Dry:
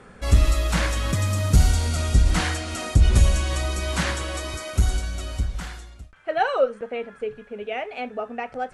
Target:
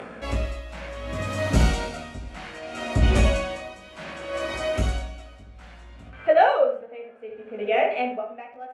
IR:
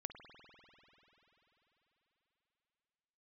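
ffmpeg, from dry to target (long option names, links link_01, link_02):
-filter_complex "[0:a]acrossover=split=290[link_01][link_02];[link_01]highpass=62[link_03];[link_02]acontrast=36[link_04];[link_03][link_04]amix=inputs=2:normalize=0,asplit=2[link_05][link_06];[link_06]adelay=68,lowpass=frequency=2000:poles=1,volume=-4dB,asplit=2[link_07][link_08];[link_08]adelay=68,lowpass=frequency=2000:poles=1,volume=0.4,asplit=2[link_09][link_10];[link_10]adelay=68,lowpass=frequency=2000:poles=1,volume=0.4,asplit=2[link_11][link_12];[link_12]adelay=68,lowpass=frequency=2000:poles=1,volume=0.4,asplit=2[link_13][link_14];[link_14]adelay=68,lowpass=frequency=2000:poles=1,volume=0.4[link_15];[link_05][link_07][link_09][link_11][link_13][link_15]amix=inputs=6:normalize=0,asplit=2[link_16][link_17];[1:a]atrim=start_sample=2205,adelay=51[link_18];[link_17][link_18]afir=irnorm=-1:irlink=0,volume=-13.5dB[link_19];[link_16][link_19]amix=inputs=2:normalize=0,acompressor=mode=upward:threshold=-32dB:ratio=2.5,equalizer=frequency=250:width_type=o:width=0.67:gain=5,equalizer=frequency=630:width_type=o:width=0.67:gain=7,equalizer=frequency=2500:width_type=o:width=0.67:gain=6,flanger=delay=18:depth=2.3:speed=0.68,aemphasis=mode=reproduction:type=50kf,aeval=exprs='val(0)*pow(10,-18*(0.5-0.5*cos(2*PI*0.64*n/s))/20)':channel_layout=same"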